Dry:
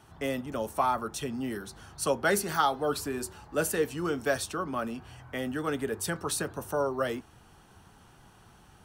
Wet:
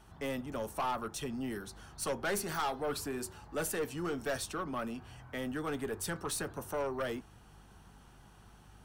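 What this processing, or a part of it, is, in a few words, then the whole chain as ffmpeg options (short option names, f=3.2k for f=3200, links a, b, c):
valve amplifier with mains hum: -af "aeval=exprs='(tanh(20*val(0)+0.2)-tanh(0.2))/20':c=same,aeval=exprs='val(0)+0.00158*(sin(2*PI*50*n/s)+sin(2*PI*2*50*n/s)/2+sin(2*PI*3*50*n/s)/3+sin(2*PI*4*50*n/s)/4+sin(2*PI*5*50*n/s)/5)':c=same,volume=-3dB"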